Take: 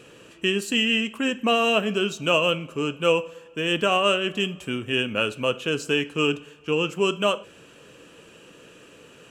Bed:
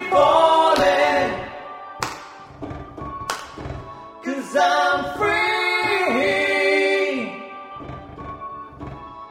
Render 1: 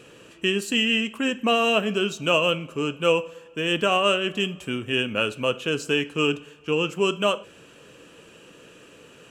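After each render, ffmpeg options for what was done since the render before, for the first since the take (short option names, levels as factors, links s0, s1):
-af anull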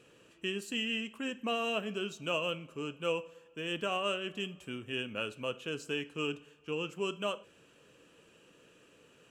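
-af "volume=0.237"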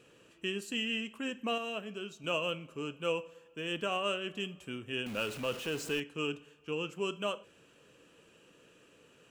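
-filter_complex "[0:a]asettb=1/sr,asplit=3[s0][s1][s2];[s0]atrim=end=5.064[s3];[s1]atrim=start=5.06:end=6,asetpts=PTS-STARTPTS,afade=t=in:d=0.004:c=qsin,afade=t=out:st=0.936:d=0.004:c=qsin,aeval=exprs='val(0)+0.5*0.01*sgn(val(0))':c=same[s4];[s2]atrim=start=5.996[s5];[s3][s4]acrossfade=d=0.004:c1=hsin:c2=qsin[s6];[s6][s5]acrossfade=d=0.004:c1=qsin:c2=hsin,asplit=3[s7][s8][s9];[s7]atrim=end=1.582[s10];[s8]atrim=start=1.578:end=2.242,asetpts=PTS-STARTPTS,volume=0.562[s11];[s9]atrim=start=2.238[s12];[s10][s11]acrossfade=d=0.004:c1=hsin:c2=hsin[s13];[s13][s12]acrossfade=d=0.004:c1=hsin:c2=hsin"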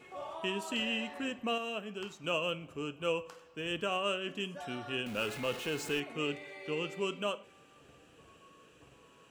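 -filter_complex "[1:a]volume=0.0376[s0];[0:a][s0]amix=inputs=2:normalize=0"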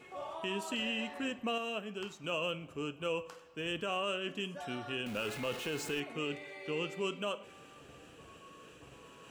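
-af "alimiter=level_in=1.19:limit=0.0631:level=0:latency=1:release=24,volume=0.841,areverse,acompressor=mode=upward:threshold=0.00447:ratio=2.5,areverse"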